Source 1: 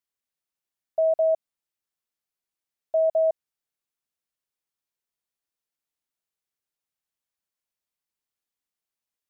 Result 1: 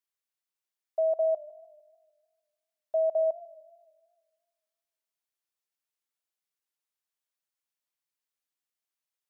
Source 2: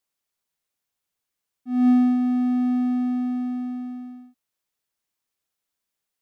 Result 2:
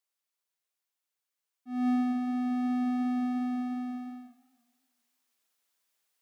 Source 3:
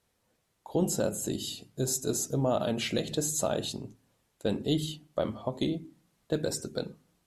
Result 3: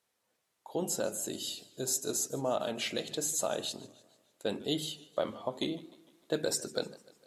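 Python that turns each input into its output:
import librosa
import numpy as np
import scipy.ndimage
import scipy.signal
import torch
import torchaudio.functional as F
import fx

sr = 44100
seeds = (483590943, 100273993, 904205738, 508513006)

y = fx.rider(x, sr, range_db=5, speed_s=2.0)
y = fx.highpass(y, sr, hz=520.0, slope=6)
y = fx.echo_warbled(y, sr, ms=151, feedback_pct=52, rate_hz=2.8, cents=126, wet_db=-20.5)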